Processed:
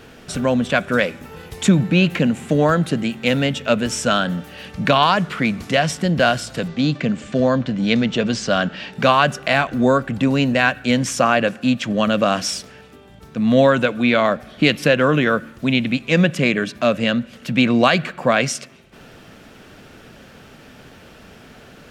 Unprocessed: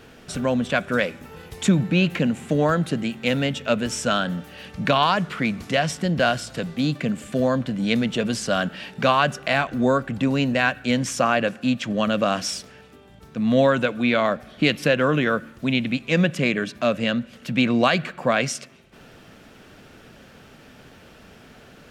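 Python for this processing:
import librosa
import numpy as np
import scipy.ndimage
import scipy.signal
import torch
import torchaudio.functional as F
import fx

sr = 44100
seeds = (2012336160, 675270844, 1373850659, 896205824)

y = fx.lowpass(x, sr, hz=6800.0, slope=24, at=(6.68, 8.93))
y = y * librosa.db_to_amplitude(4.0)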